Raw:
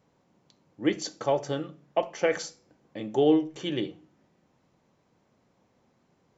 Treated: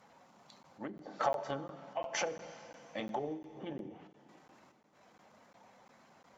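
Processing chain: bin magnitudes rounded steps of 15 dB; step gate "xxxxxx.xx.xxx" 70 bpm -12 dB; transient shaper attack -8 dB, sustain +2 dB; treble ducked by the level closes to 340 Hz, closed at -27.5 dBFS; bell 230 Hz +12 dB 1 oct; compressor 5:1, threshold -34 dBFS, peak gain reduction 17 dB; resonant low shelf 490 Hz -14 dB, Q 1.5; notches 60/120/180/240/300/360/420/480 Hz; plate-style reverb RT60 3.3 s, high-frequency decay 1×, DRR 13 dB; crackling interface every 0.35 s, samples 512, zero, from 0.63; ending taper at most 130 dB/s; gain +9.5 dB

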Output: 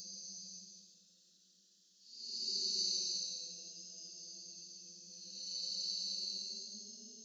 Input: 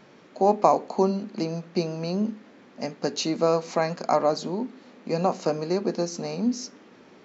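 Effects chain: frequency shift +21 Hz; Paulstretch 11×, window 0.10 s, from 1.54; inverse Chebyshev high-pass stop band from 2400 Hz, stop band 40 dB; gain +5 dB

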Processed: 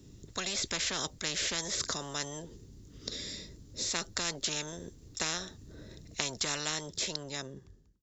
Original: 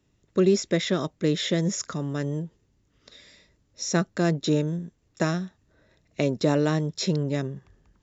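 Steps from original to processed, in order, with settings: ending faded out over 1.61 s; band shelf 1300 Hz -11 dB 2.7 oct; spectral compressor 10:1; gain -1 dB

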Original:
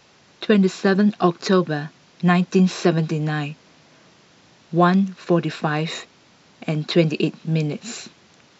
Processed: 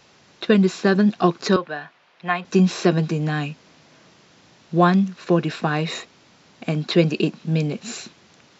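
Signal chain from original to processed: 1.56–2.45 three-band isolator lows -18 dB, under 510 Hz, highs -18 dB, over 3500 Hz

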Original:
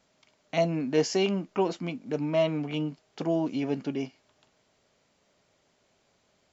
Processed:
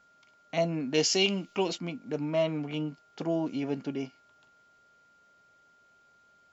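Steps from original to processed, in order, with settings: 0.94–1.78 resonant high shelf 2100 Hz +8.5 dB, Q 1.5; whine 1400 Hz -58 dBFS; gain -2.5 dB

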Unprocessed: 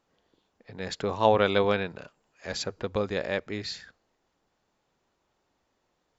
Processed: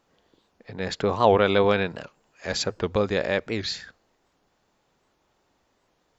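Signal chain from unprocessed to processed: 0.73–1.69 high shelf 5300 Hz -6 dB; in parallel at -0.5 dB: limiter -16.5 dBFS, peak gain reduction 10 dB; on the sum: record warp 78 rpm, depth 160 cents

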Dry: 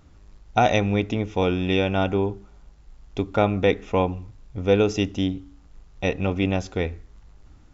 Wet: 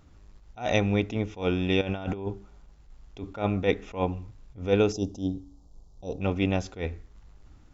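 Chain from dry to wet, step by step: 1.81–2.27 negative-ratio compressor -27 dBFS, ratio -0.5; 4.92–6.21 Chebyshev band-stop 800–4800 Hz, order 2; attack slew limiter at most 190 dB/s; gain -2.5 dB

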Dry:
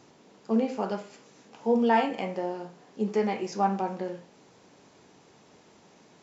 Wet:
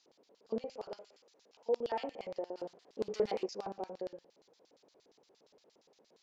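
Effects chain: 0.61–2.04 low shelf 270 Hz -12 dB; 2.57–3.46 sample leveller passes 2; LFO band-pass square 8.6 Hz 500–4500 Hz; gain -3 dB

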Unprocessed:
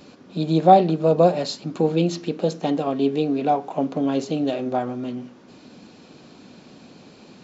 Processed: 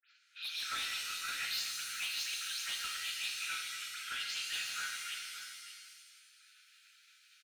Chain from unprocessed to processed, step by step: spectral delay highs late, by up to 0.114 s; LPF 3300 Hz 12 dB/oct; expander -35 dBFS; Chebyshev high-pass 1300 Hz, order 10; high shelf 2300 Hz +8 dB; in parallel at -1.5 dB: compressor, threshold -54 dBFS, peak gain reduction 24.5 dB; on the sum: hard clip -35 dBFS, distortion -8 dB; echo 0.577 s -11.5 dB; shimmer reverb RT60 1.5 s, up +7 st, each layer -2 dB, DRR 2 dB; gain -1.5 dB

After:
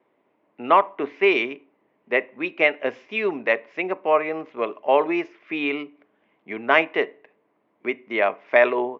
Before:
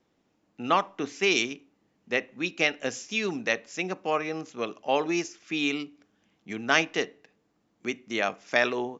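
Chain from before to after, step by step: speaker cabinet 170–2900 Hz, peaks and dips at 180 Hz -5 dB, 400 Hz +7 dB, 610 Hz +9 dB, 1000 Hz +10 dB, 2100 Hz +7 dB; gain +1 dB

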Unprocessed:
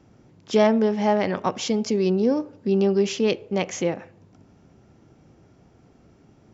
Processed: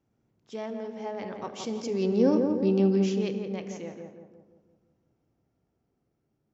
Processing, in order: Doppler pass-by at 2.41, 6 m/s, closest 1.3 m; on a send: darkening echo 0.171 s, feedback 53%, low-pass 1300 Hz, level -4 dB; on the sum: non-linear reverb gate 0.39 s falling, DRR 11 dB

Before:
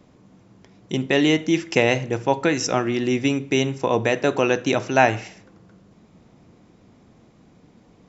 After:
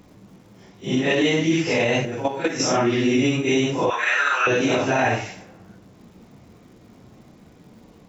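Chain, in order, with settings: phase scrambler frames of 0.2 s; limiter -15 dBFS, peak gain reduction 9.5 dB; 2.05–2.6 level quantiser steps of 11 dB; crackle 270/s -54 dBFS; 3.9–4.47 resonant high-pass 1400 Hz, resonance Q 4.6; on a send: tape echo 94 ms, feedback 63%, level -21 dB, low-pass 4200 Hz; on the sum: gain +4 dB

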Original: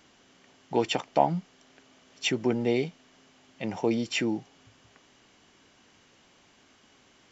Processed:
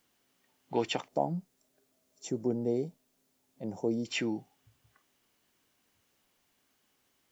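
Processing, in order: spectral noise reduction 12 dB; 1.08–4.05 EQ curve 540 Hz 0 dB, 2700 Hz -24 dB, 6900 Hz 0 dB; requantised 12-bit, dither triangular; gain -4.5 dB

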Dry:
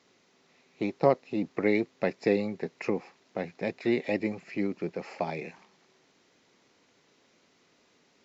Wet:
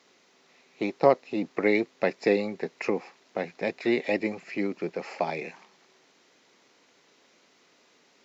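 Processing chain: HPF 330 Hz 6 dB/oct; gain +4.5 dB

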